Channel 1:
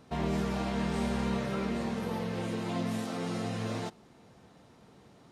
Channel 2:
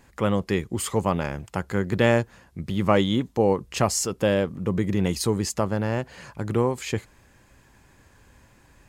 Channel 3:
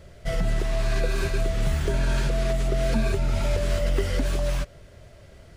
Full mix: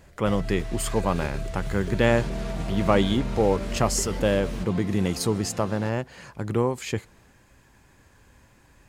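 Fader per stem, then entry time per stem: −4.0, −1.0, −8.0 decibels; 2.00, 0.00, 0.00 seconds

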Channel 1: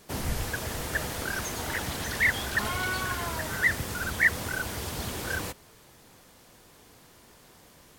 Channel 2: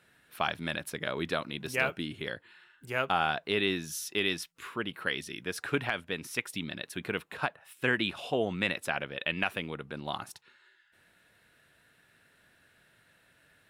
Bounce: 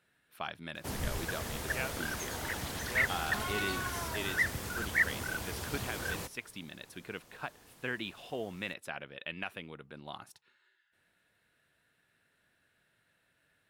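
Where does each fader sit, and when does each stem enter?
−5.5, −9.0 decibels; 0.75, 0.00 seconds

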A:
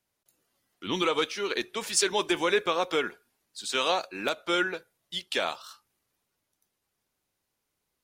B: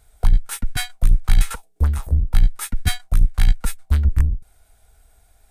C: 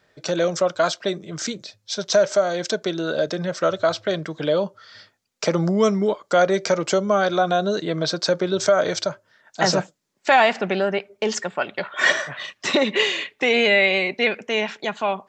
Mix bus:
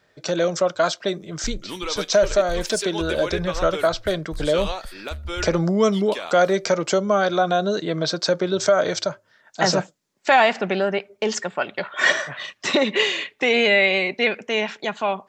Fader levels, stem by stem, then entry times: −4.0, −17.5, 0.0 decibels; 0.80, 1.20, 0.00 seconds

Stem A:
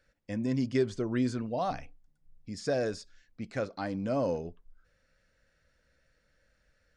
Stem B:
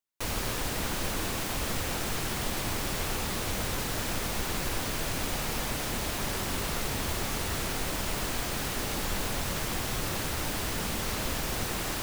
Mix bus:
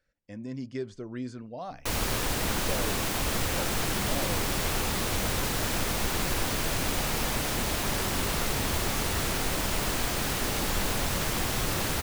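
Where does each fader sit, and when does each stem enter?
−7.0, +3.0 decibels; 0.00, 1.65 seconds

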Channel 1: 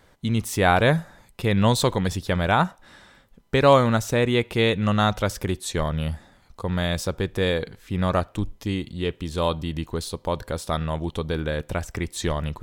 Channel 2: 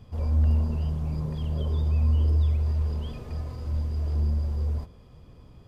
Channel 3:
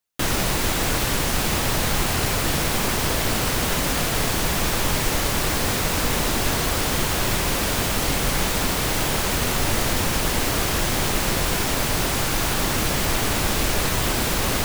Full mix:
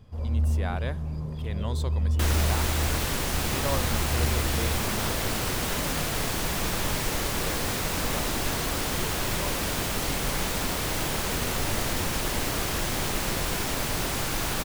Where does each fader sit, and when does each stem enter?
−16.0, −3.0, −6.0 decibels; 0.00, 0.00, 2.00 seconds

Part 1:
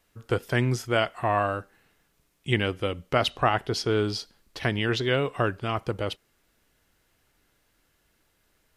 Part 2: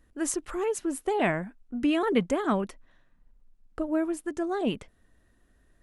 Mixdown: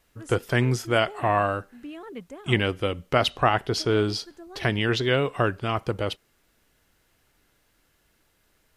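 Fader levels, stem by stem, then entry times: +2.0, −14.5 decibels; 0.00, 0.00 seconds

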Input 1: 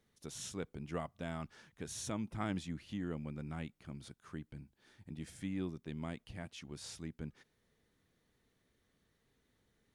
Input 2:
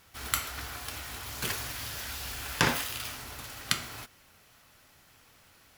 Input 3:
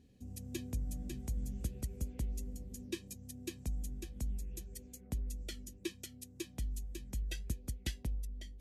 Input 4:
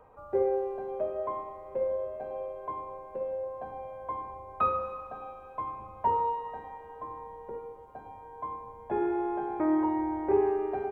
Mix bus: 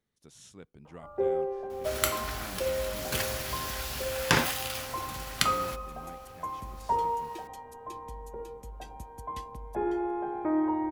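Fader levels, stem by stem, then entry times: −7.5, +1.5, −6.5, −1.0 decibels; 0.00, 1.70, 1.50, 0.85 seconds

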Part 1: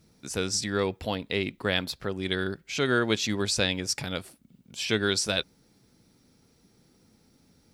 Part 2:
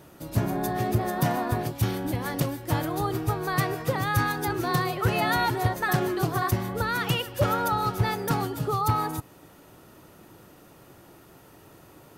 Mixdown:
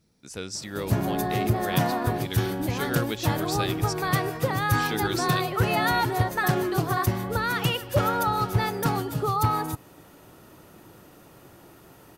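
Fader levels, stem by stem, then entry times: −6.0, +1.0 decibels; 0.00, 0.55 seconds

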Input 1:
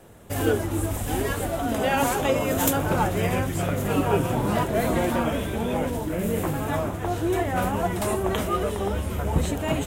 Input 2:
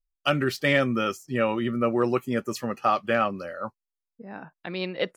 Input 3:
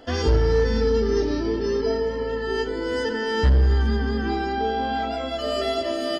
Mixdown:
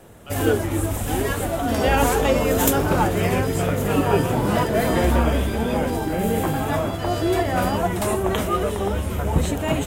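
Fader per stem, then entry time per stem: +3.0, −19.0, −5.5 decibels; 0.00, 0.00, 1.60 seconds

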